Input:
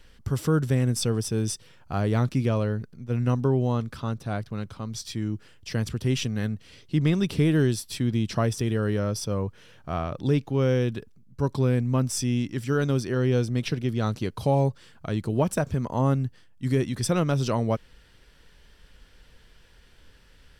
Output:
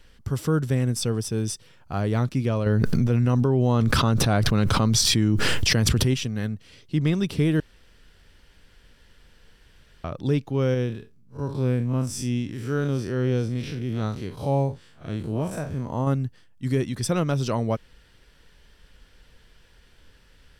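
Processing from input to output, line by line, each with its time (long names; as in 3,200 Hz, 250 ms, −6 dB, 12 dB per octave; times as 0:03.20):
0:02.66–0:06.14: envelope flattener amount 100%
0:07.60–0:10.04: fill with room tone
0:10.74–0:16.07: spectrum smeared in time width 98 ms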